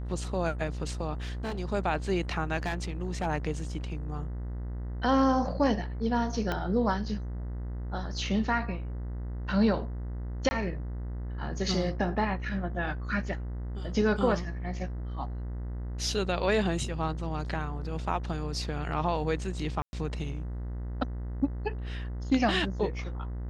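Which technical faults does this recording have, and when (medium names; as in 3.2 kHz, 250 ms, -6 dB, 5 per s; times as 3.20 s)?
buzz 60 Hz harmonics 34 -35 dBFS
1.21–1.60 s: clipped -30 dBFS
2.57–3.27 s: clipped -26 dBFS
6.52 s: pop -17 dBFS
10.49–10.51 s: dropout 20 ms
19.82–19.93 s: dropout 111 ms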